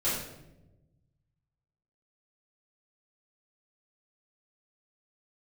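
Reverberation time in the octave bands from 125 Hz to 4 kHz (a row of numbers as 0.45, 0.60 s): 2.1, 1.5, 1.2, 0.75, 0.70, 0.60 s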